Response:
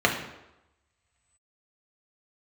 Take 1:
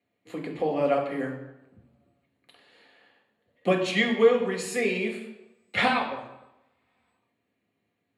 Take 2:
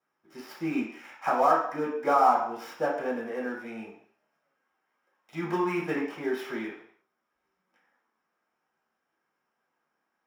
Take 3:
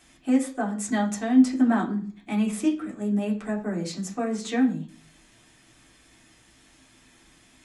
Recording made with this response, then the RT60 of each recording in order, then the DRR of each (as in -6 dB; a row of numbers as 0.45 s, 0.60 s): 1; 0.95 s, 0.60 s, 0.45 s; -0.5 dB, -7.5 dB, -4.0 dB